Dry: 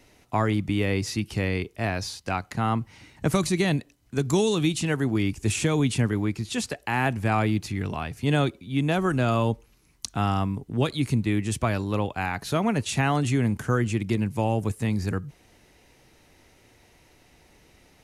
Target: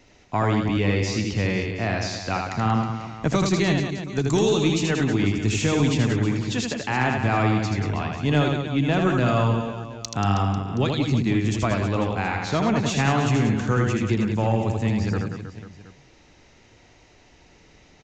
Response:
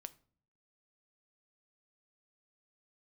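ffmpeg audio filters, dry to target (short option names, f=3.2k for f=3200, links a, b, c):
-af "aresample=16000,aresample=44100,aecho=1:1:80|184|319.2|495|723.4:0.631|0.398|0.251|0.158|0.1,aeval=exprs='0.398*(cos(1*acos(clip(val(0)/0.398,-1,1)))-cos(1*PI/2))+0.0141*(cos(5*acos(clip(val(0)/0.398,-1,1)))-cos(5*PI/2))+0.00447*(cos(6*acos(clip(val(0)/0.398,-1,1)))-cos(6*PI/2))':c=same"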